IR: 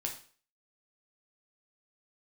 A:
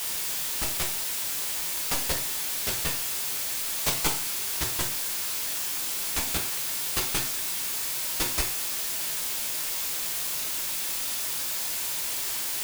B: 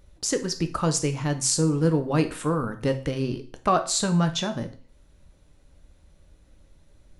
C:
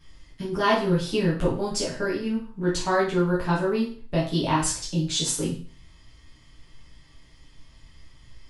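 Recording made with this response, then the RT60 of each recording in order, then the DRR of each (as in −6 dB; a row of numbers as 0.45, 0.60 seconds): A; 0.45, 0.45, 0.45 seconds; 0.5, 7.0, −8.0 decibels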